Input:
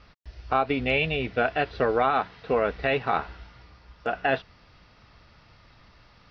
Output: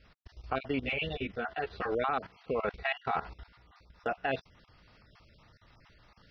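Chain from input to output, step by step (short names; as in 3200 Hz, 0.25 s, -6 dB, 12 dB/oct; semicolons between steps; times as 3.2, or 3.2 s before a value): random spectral dropouts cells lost 27%; 2.61–3.26 notch comb 300 Hz; level quantiser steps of 15 dB; 0.81–1.92 ensemble effect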